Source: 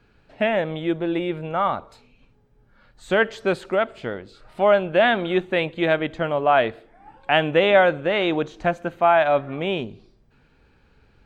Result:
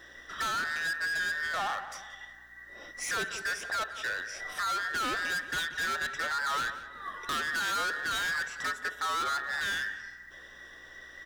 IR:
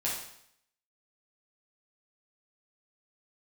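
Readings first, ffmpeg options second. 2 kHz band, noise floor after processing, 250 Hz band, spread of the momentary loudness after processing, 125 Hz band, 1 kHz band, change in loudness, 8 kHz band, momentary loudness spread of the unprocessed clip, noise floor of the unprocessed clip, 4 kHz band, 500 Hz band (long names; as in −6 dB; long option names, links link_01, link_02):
−3.5 dB, −51 dBFS, −22.5 dB, 17 LU, −21.5 dB, −10.0 dB, −10.0 dB, can't be measured, 10 LU, −59 dBFS, −4.5 dB, −25.5 dB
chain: -filter_complex "[0:a]afftfilt=real='real(if(between(b,1,1012),(2*floor((b-1)/92)+1)*92-b,b),0)':imag='imag(if(between(b,1,1012),(2*floor((b-1)/92)+1)*92-b,b),0)*if(between(b,1,1012),-1,1)':win_size=2048:overlap=0.75,bass=frequency=250:gain=-5,treble=frequency=4000:gain=7,acompressor=threshold=-39dB:ratio=2,acrusher=bits=9:mode=log:mix=0:aa=0.000001,asoftclip=type=hard:threshold=-36.5dB,aeval=exprs='val(0)+0.000251*(sin(2*PI*60*n/s)+sin(2*PI*2*60*n/s)/2+sin(2*PI*3*60*n/s)/3+sin(2*PI*4*60*n/s)/4+sin(2*PI*5*60*n/s)/5)':channel_layout=same,asplit=2[link_01][link_02];[link_02]adelay=180,lowpass=frequency=2400:poles=1,volume=-11.5dB,asplit=2[link_03][link_04];[link_04]adelay=180,lowpass=frequency=2400:poles=1,volume=0.45,asplit=2[link_05][link_06];[link_06]adelay=180,lowpass=frequency=2400:poles=1,volume=0.45,asplit=2[link_07][link_08];[link_08]adelay=180,lowpass=frequency=2400:poles=1,volume=0.45,asplit=2[link_09][link_10];[link_10]adelay=180,lowpass=frequency=2400:poles=1,volume=0.45[link_11];[link_01][link_03][link_05][link_07][link_09][link_11]amix=inputs=6:normalize=0,volume=7dB"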